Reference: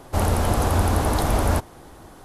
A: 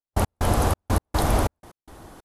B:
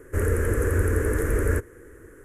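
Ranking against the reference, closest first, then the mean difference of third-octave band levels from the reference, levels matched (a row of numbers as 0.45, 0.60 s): B, A; 6.5, 11.0 dB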